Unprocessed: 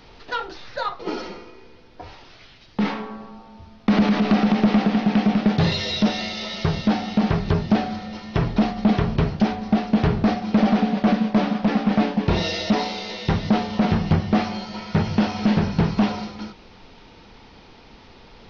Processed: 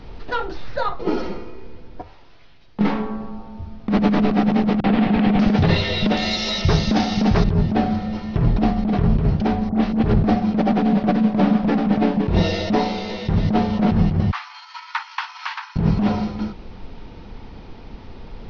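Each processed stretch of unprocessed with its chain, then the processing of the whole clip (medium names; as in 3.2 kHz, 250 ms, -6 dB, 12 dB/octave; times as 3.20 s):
2.02–2.81 s: bass shelf 340 Hz -8 dB + feedback comb 77 Hz, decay 1.8 s
4.80–7.44 s: treble shelf 2.3 kHz +11.5 dB + three bands offset in time lows, mids, highs 40/590 ms, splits 150/3800 Hz
9.69–10.14 s: doubling 27 ms -4.5 dB + phase dispersion highs, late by 65 ms, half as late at 2.2 kHz
14.31–15.76 s: transient shaper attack +9 dB, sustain -6 dB + steep high-pass 920 Hz 72 dB/octave
whole clip: tilt EQ -2.5 dB/octave; compressor with a negative ratio -16 dBFS, ratio -1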